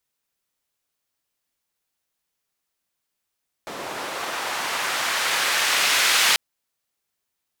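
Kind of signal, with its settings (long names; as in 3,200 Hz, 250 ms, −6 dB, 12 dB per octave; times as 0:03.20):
filter sweep on noise white, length 2.69 s bandpass, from 490 Hz, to 2,300 Hz, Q 0.79, linear, gain ramp +10.5 dB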